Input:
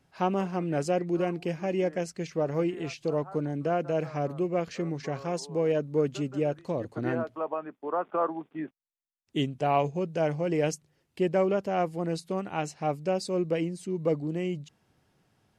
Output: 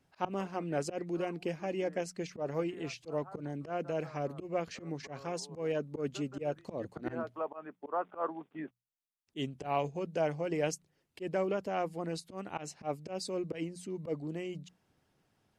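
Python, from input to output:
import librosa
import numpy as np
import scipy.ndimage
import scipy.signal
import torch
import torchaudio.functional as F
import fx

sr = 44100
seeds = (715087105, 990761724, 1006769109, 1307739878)

y = fx.auto_swell(x, sr, attack_ms=102.0)
y = fx.hpss(y, sr, part='percussive', gain_db=5)
y = fx.hum_notches(y, sr, base_hz=60, count=3)
y = F.gain(torch.from_numpy(y), -7.5).numpy()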